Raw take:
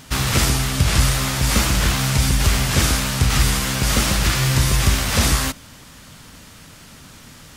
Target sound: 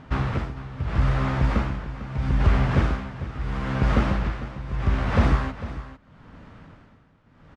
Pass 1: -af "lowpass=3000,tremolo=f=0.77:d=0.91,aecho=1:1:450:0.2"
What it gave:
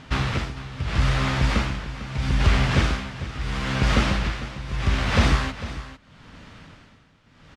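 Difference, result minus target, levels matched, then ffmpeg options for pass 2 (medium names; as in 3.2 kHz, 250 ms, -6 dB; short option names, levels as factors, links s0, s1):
4 kHz band +10.5 dB
-af "lowpass=1400,tremolo=f=0.77:d=0.91,aecho=1:1:450:0.2"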